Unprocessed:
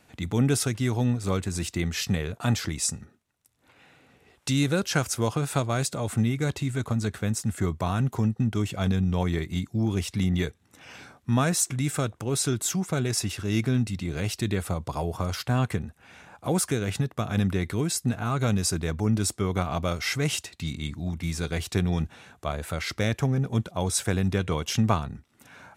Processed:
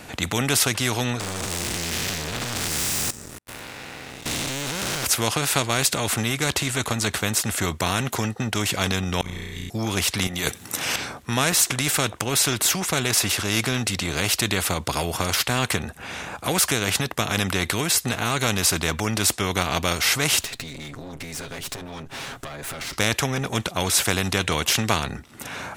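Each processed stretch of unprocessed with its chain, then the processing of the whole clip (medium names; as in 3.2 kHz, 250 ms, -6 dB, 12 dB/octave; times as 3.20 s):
1.20–5.05 s: spectral blur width 336 ms + level held to a coarse grid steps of 24 dB + waveshaping leveller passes 5
9.21–9.70 s: amplifier tone stack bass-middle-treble 6-0-2 + AM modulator 56 Hz, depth 70% + flutter echo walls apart 5.7 m, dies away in 1.4 s
10.27–10.96 s: high-pass 110 Hz + treble shelf 6.1 kHz +11.5 dB + compressor with a negative ratio -33 dBFS
20.41–22.93 s: comb filter that takes the minimum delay 7.4 ms + compression 10:1, threshold -45 dBFS
whole clip: dynamic bell 2.8 kHz, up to +5 dB, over -45 dBFS, Q 0.97; spectrum-flattening compressor 2:1; trim +4.5 dB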